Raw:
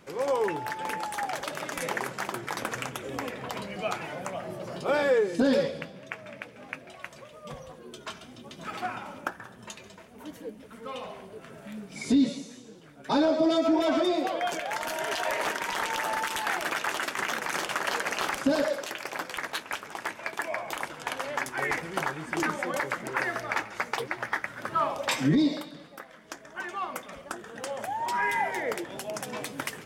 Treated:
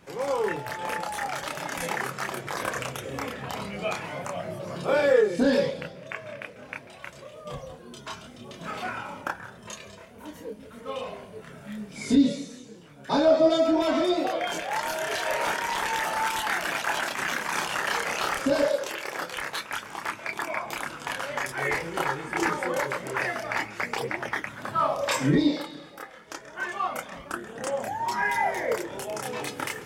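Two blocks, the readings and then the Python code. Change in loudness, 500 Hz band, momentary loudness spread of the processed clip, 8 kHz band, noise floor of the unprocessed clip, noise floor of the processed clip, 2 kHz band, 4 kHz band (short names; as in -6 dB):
+2.0 dB, +3.5 dB, 18 LU, +2.0 dB, -50 dBFS, -47 dBFS, +2.0 dB, +2.0 dB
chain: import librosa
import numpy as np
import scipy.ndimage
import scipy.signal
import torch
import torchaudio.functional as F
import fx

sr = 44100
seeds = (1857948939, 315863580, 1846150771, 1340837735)

y = fx.chorus_voices(x, sr, voices=4, hz=0.14, base_ms=29, depth_ms=1.2, mix_pct=50)
y = y * 10.0 ** (5.0 / 20.0)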